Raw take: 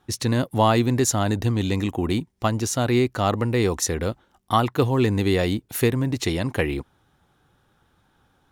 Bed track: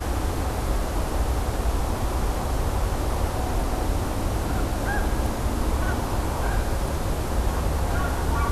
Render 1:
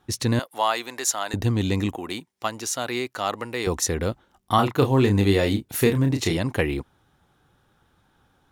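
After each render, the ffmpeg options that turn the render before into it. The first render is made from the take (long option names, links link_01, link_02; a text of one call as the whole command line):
ffmpeg -i in.wav -filter_complex "[0:a]asettb=1/sr,asplit=3[link_01][link_02][link_03];[link_01]atrim=end=0.394[link_04];[link_02]atrim=start=0.39:end=1.34,asetpts=PTS-STARTPTS,afade=type=in:duration=0.004:curve=qsin,afade=type=out:start_time=0.946:duration=0.004:curve=qsin,highpass=810[link_05];[link_03]atrim=start=1.336[link_06];[link_04][link_05]acrossfade=duration=0.004:curve1=hsin:curve2=qsin[link_07];[link_07][link_06]acrossfade=duration=0.004:curve1=qsin:curve2=hsin,asettb=1/sr,asplit=3[link_08][link_09][link_10];[link_08]atrim=end=1.964[link_11];[link_09]atrim=start=1.96:end=3.67,asetpts=PTS-STARTPTS,afade=type=in:duration=0.004:curve=qsin,afade=type=out:start_time=1.706:duration=0.004:curve=qsin,highpass=frequency=870:poles=1[link_12];[link_10]atrim=start=3.666[link_13];[link_11][link_12]acrossfade=duration=0.004:curve1=hsin:curve2=qsin[link_14];[link_14][link_13]acrossfade=duration=0.004:curve1=qsin:curve2=hsin,asettb=1/sr,asplit=3[link_15][link_16][link_17];[link_15]atrim=end=4.554[link_18];[link_16]atrim=start=4.55:end=6.37,asetpts=PTS-STARTPTS,afade=type=in:duration=0.004:curve=qsin,afade=type=out:start_time=1.816:duration=0.004:curve=qsin,asplit=2[link_19][link_20];[link_20]adelay=30,volume=-6dB[link_21];[link_19][link_21]amix=inputs=2:normalize=0,atrim=end_sample=80262[link_22];[link_17]atrim=start=6.366[link_23];[link_18][link_22]acrossfade=duration=0.004:curve1=hsin:curve2=qsin[link_24];[link_24][link_23]acrossfade=duration=0.004:curve1=qsin:curve2=hsin" out.wav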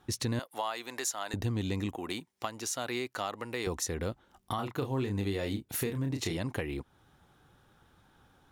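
ffmpeg -i in.wav -af "alimiter=limit=-14dB:level=0:latency=1:release=492,acompressor=threshold=-36dB:ratio=2" out.wav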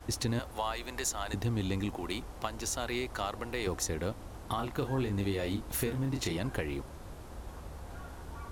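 ffmpeg -i in.wav -i bed.wav -filter_complex "[1:a]volume=-20.5dB[link_01];[0:a][link_01]amix=inputs=2:normalize=0" out.wav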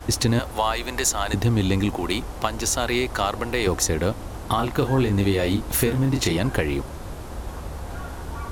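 ffmpeg -i in.wav -af "volume=11.5dB" out.wav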